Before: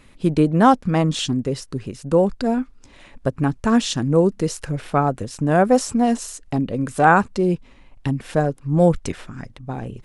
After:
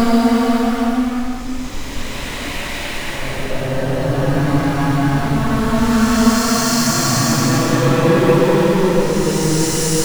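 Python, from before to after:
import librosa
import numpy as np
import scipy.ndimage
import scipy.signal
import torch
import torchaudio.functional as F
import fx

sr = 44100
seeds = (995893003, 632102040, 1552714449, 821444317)

y = fx.power_curve(x, sr, exponent=0.35)
y = fx.spec_repair(y, sr, seeds[0], start_s=3.78, length_s=0.34, low_hz=630.0, high_hz=4100.0, source='both')
y = fx.paulstretch(y, sr, seeds[1], factor=4.8, window_s=0.5, from_s=2.44)
y = F.gain(torch.from_numpy(y), -4.5).numpy()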